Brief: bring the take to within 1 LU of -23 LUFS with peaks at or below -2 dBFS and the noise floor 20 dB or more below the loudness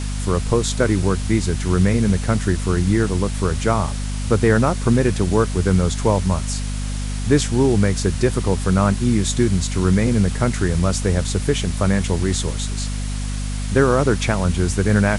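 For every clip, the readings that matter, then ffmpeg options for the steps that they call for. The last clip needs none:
hum 50 Hz; harmonics up to 250 Hz; hum level -22 dBFS; noise floor -24 dBFS; noise floor target -40 dBFS; loudness -19.5 LUFS; peak -2.0 dBFS; loudness target -23.0 LUFS
-> -af "bandreject=f=50:t=h:w=6,bandreject=f=100:t=h:w=6,bandreject=f=150:t=h:w=6,bandreject=f=200:t=h:w=6,bandreject=f=250:t=h:w=6"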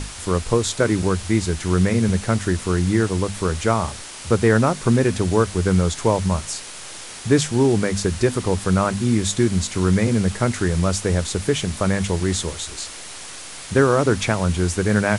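hum none; noise floor -36 dBFS; noise floor target -41 dBFS
-> -af "afftdn=nr=6:nf=-36"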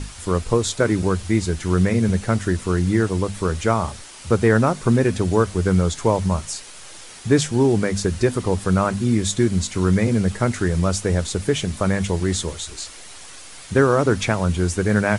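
noise floor -40 dBFS; noise floor target -41 dBFS
-> -af "afftdn=nr=6:nf=-40"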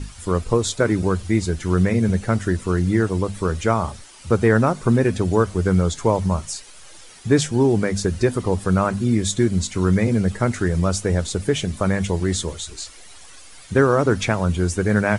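noise floor -43 dBFS; loudness -20.5 LUFS; peak -3.5 dBFS; loudness target -23.0 LUFS
-> -af "volume=-2.5dB"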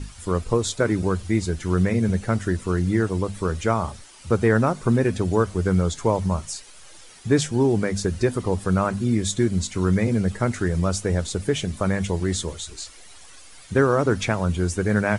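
loudness -23.0 LUFS; peak -6.0 dBFS; noise floor -45 dBFS

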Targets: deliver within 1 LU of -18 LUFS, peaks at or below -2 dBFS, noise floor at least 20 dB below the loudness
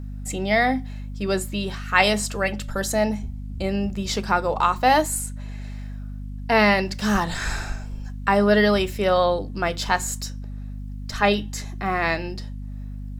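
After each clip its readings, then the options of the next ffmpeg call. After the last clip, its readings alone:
hum 50 Hz; harmonics up to 250 Hz; hum level -30 dBFS; loudness -22.5 LUFS; peak -1.5 dBFS; loudness target -18.0 LUFS
-> -af "bandreject=f=50:t=h:w=6,bandreject=f=100:t=h:w=6,bandreject=f=150:t=h:w=6,bandreject=f=200:t=h:w=6,bandreject=f=250:t=h:w=6"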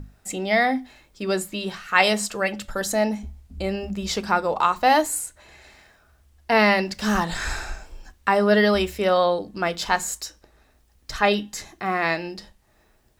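hum none; loudness -22.5 LUFS; peak -2.0 dBFS; loudness target -18.0 LUFS
-> -af "volume=4.5dB,alimiter=limit=-2dB:level=0:latency=1"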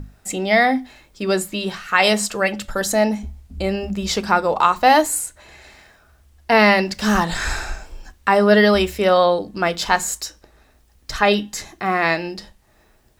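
loudness -18.5 LUFS; peak -2.0 dBFS; noise floor -56 dBFS

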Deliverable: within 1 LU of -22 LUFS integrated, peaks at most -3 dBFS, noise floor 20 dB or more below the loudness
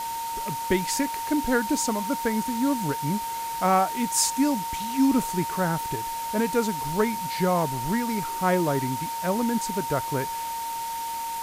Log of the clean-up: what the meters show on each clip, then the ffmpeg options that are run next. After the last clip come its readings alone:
steady tone 920 Hz; tone level -29 dBFS; noise floor -31 dBFS; noise floor target -46 dBFS; loudness -26.0 LUFS; peak -10.0 dBFS; loudness target -22.0 LUFS
-> -af "bandreject=f=920:w=30"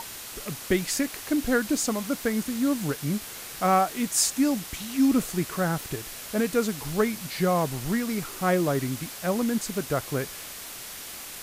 steady tone none; noise floor -40 dBFS; noise floor target -47 dBFS
-> -af "afftdn=nr=7:nf=-40"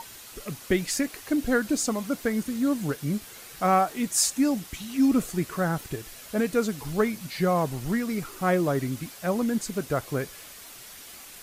noise floor -45 dBFS; noise floor target -47 dBFS
-> -af "afftdn=nr=6:nf=-45"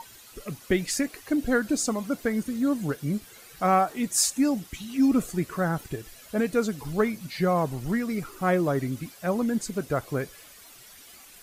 noise floor -50 dBFS; loudness -27.0 LUFS; peak -10.0 dBFS; loudness target -22.0 LUFS
-> -af "volume=5dB"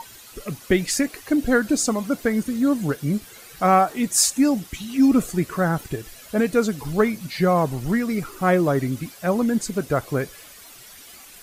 loudness -22.0 LUFS; peak -5.0 dBFS; noise floor -45 dBFS

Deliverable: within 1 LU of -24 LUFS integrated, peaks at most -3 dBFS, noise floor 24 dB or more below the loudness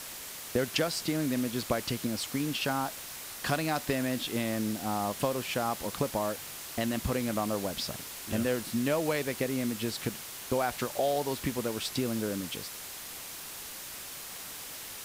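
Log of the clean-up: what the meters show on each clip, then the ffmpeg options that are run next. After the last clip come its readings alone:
noise floor -43 dBFS; noise floor target -57 dBFS; loudness -32.5 LUFS; peak -13.5 dBFS; loudness target -24.0 LUFS
-> -af "afftdn=nr=14:nf=-43"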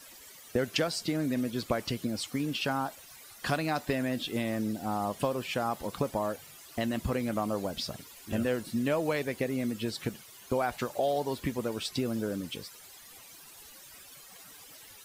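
noise floor -52 dBFS; noise floor target -57 dBFS
-> -af "afftdn=nr=6:nf=-52"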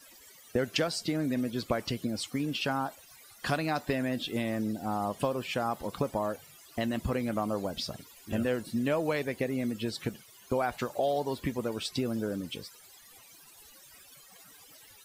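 noise floor -55 dBFS; noise floor target -57 dBFS
-> -af "afftdn=nr=6:nf=-55"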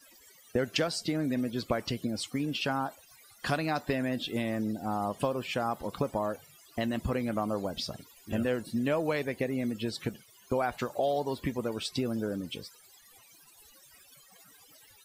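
noise floor -59 dBFS; loudness -32.5 LUFS; peak -13.5 dBFS; loudness target -24.0 LUFS
-> -af "volume=8.5dB"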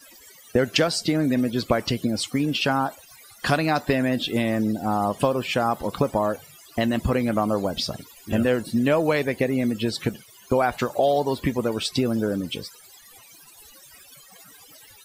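loudness -24.0 LUFS; peak -5.0 dBFS; noise floor -50 dBFS

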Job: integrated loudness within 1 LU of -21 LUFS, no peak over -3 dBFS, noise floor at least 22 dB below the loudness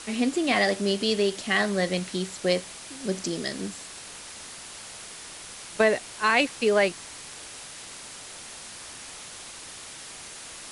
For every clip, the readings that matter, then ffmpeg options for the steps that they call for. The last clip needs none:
noise floor -42 dBFS; noise floor target -48 dBFS; loudness -25.5 LUFS; peak -8.5 dBFS; loudness target -21.0 LUFS
-> -af "afftdn=nr=6:nf=-42"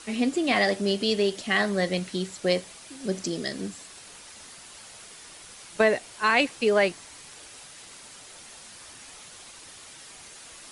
noise floor -47 dBFS; noise floor target -48 dBFS
-> -af "afftdn=nr=6:nf=-47"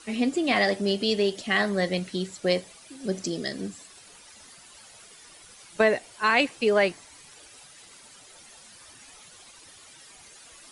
noise floor -51 dBFS; loudness -25.5 LUFS; peak -8.5 dBFS; loudness target -21.0 LUFS
-> -af "volume=4.5dB"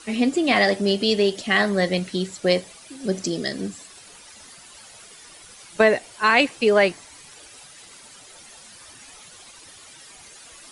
loudness -21.0 LUFS; peak -4.0 dBFS; noise floor -46 dBFS

